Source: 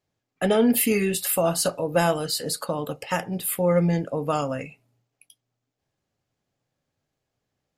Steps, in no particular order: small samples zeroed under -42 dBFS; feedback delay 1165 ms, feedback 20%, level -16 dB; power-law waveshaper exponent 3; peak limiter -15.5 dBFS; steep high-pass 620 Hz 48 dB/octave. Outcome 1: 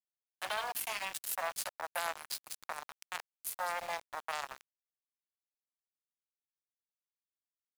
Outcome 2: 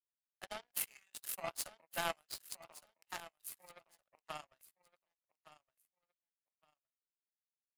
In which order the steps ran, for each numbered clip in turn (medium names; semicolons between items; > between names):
peak limiter > feedback delay > power-law waveshaper > steep high-pass > small samples zeroed; steep high-pass > small samples zeroed > power-law waveshaper > feedback delay > peak limiter